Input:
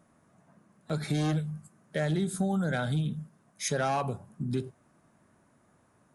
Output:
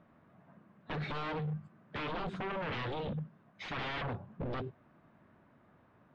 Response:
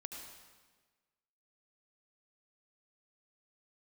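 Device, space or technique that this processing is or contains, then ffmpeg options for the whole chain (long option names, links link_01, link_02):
synthesiser wavefolder: -af "aeval=exprs='0.0224*(abs(mod(val(0)/0.0224+3,4)-2)-1)':channel_layout=same,lowpass=frequency=3400:width=0.5412,lowpass=frequency=3400:width=1.3066,volume=1dB"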